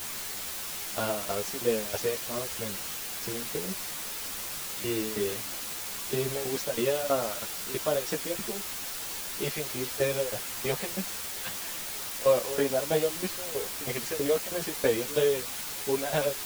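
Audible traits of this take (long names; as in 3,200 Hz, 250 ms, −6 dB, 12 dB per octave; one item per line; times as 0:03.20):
tremolo saw down 3.1 Hz, depth 90%
a quantiser's noise floor 6 bits, dither triangular
a shimmering, thickened sound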